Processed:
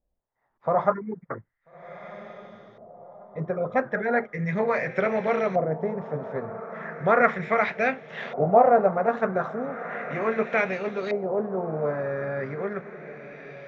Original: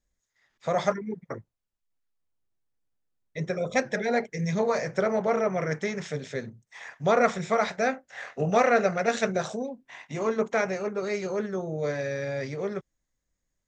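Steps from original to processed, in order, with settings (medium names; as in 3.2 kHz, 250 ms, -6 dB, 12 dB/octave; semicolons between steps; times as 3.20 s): echo that smears into a reverb 1341 ms, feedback 44%, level -13.5 dB; LFO low-pass saw up 0.36 Hz 690–3400 Hz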